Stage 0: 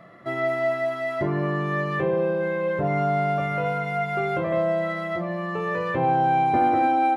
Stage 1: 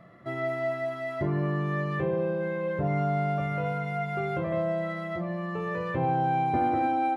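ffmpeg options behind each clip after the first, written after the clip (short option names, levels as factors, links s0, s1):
-af "lowshelf=f=170:g=10.5,volume=0.473"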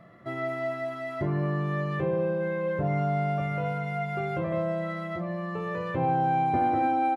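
-filter_complex "[0:a]asplit=2[s0][s1];[s1]adelay=19,volume=0.2[s2];[s0][s2]amix=inputs=2:normalize=0"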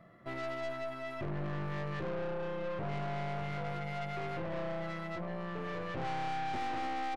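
-af "aeval=exprs='(tanh(44.7*val(0)+0.7)-tanh(0.7))/44.7':c=same,volume=0.794"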